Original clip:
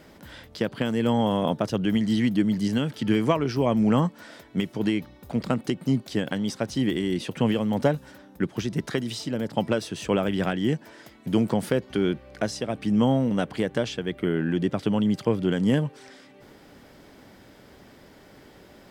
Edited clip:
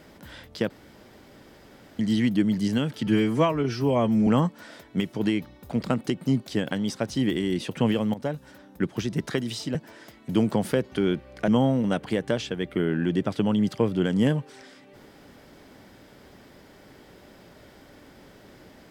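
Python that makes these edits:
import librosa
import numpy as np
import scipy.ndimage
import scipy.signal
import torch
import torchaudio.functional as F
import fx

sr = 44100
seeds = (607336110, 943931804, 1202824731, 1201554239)

y = fx.edit(x, sr, fx.room_tone_fill(start_s=0.7, length_s=1.29),
    fx.stretch_span(start_s=3.07, length_s=0.8, factor=1.5),
    fx.fade_in_from(start_s=7.74, length_s=0.7, curve='qsin', floor_db=-15.0),
    fx.cut(start_s=9.35, length_s=1.38),
    fx.cut(start_s=12.46, length_s=0.49), tone=tone)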